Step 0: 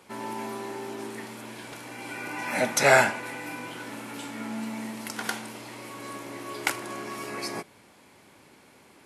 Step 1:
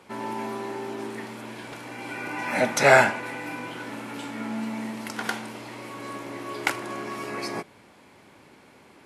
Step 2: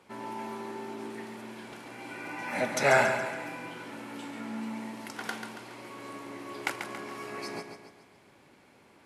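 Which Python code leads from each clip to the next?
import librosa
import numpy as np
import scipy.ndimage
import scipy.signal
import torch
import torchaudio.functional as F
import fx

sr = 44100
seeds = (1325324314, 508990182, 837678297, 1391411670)

y1 = fx.high_shelf(x, sr, hz=5500.0, db=-9.0)
y1 = F.gain(torch.from_numpy(y1), 3.0).numpy()
y2 = fx.echo_feedback(y1, sr, ms=139, feedback_pct=48, wet_db=-7.5)
y2 = F.gain(torch.from_numpy(y2), -7.0).numpy()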